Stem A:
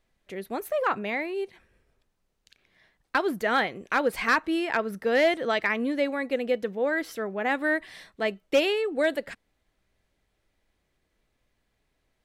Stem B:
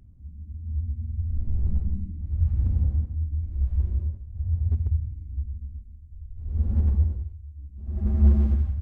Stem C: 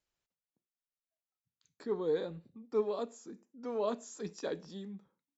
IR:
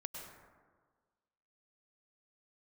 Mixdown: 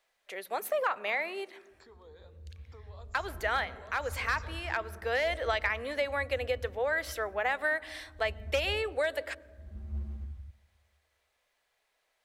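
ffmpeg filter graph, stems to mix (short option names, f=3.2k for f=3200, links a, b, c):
-filter_complex "[0:a]volume=2dB,asplit=2[a][b];[b]volume=-21.5dB[c];[1:a]highpass=48,equalizer=f=230:w=0.33:g=-8.5,adelay=1700,volume=-15dB,asplit=2[d][e];[e]volume=-13dB[f];[2:a]acompressor=threshold=-42dB:ratio=5,volume=-4dB,asplit=3[g][h][i];[h]volume=-11.5dB[j];[i]apad=whole_len=539859[k];[a][k]sidechaincompress=threshold=-52dB:ratio=4:attack=5.6:release=944[l];[l][g]amix=inputs=2:normalize=0,highpass=f=510:w=0.5412,highpass=f=510:w=1.3066,acompressor=threshold=-26dB:ratio=6,volume=0dB[m];[3:a]atrim=start_sample=2205[n];[c][f][j]amix=inputs=3:normalize=0[o];[o][n]afir=irnorm=-1:irlink=0[p];[d][m][p]amix=inputs=3:normalize=0"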